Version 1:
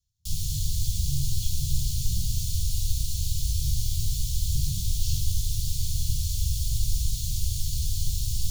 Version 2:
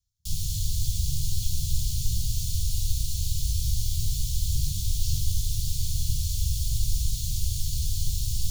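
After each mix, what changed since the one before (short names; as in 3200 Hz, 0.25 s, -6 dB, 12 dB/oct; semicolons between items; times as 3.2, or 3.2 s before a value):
speech: send -7.5 dB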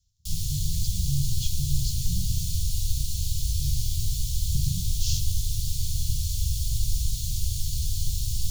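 speech +10.0 dB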